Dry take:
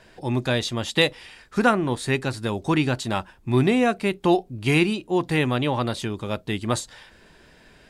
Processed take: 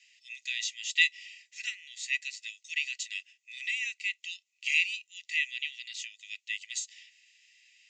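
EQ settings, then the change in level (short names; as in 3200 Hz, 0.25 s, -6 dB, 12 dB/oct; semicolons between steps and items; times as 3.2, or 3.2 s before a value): rippled Chebyshev high-pass 1900 Hz, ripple 9 dB; elliptic low-pass 7200 Hz, stop band 40 dB; +2.5 dB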